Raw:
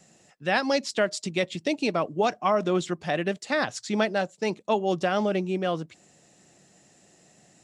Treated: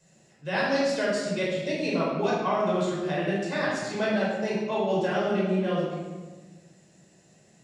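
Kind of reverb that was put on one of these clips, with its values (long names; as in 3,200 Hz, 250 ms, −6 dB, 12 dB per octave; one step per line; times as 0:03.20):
rectangular room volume 1,000 cubic metres, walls mixed, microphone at 5.1 metres
level −11 dB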